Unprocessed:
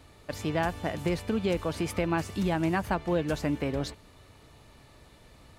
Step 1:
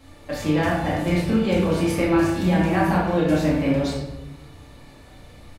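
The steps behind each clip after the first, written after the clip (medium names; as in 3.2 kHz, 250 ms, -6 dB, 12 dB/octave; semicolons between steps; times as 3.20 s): doubling 33 ms -6 dB; simulated room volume 310 m³, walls mixed, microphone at 2.2 m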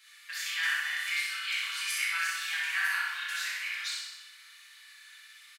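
steep high-pass 1.5 kHz 36 dB/octave; feedback delay 63 ms, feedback 57%, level -3.5 dB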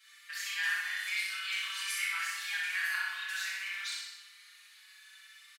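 endless flanger 4.7 ms +0.54 Hz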